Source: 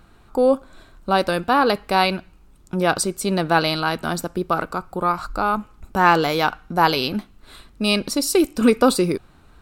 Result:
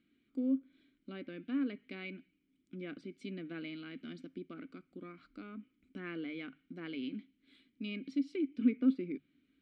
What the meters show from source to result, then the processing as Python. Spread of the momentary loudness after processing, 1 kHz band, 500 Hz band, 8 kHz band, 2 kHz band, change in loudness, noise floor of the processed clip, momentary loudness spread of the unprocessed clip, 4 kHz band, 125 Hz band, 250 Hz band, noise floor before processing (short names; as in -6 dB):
18 LU, -39.5 dB, -26.0 dB, under -40 dB, -25.0 dB, -18.5 dB, -77 dBFS, 10 LU, -27.5 dB, -23.0 dB, -12.5 dB, -51 dBFS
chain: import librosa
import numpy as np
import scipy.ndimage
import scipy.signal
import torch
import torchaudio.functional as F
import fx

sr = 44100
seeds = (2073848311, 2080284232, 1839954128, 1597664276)

y = fx.env_lowpass_down(x, sr, base_hz=2000.0, full_db=-15.5)
y = fx.vowel_filter(y, sr, vowel='i')
y = fx.hum_notches(y, sr, base_hz=50, count=3)
y = y * 10.0 ** (-6.5 / 20.0)